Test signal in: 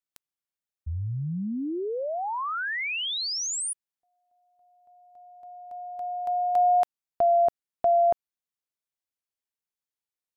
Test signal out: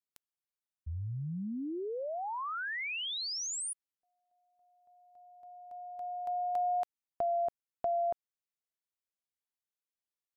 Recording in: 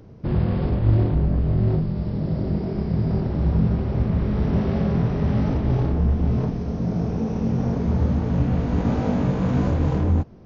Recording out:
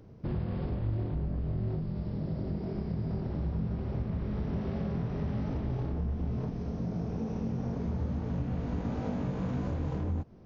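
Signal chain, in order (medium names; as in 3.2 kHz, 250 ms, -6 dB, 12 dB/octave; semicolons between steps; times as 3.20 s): compression 2.5:1, threshold -24 dBFS; trim -7 dB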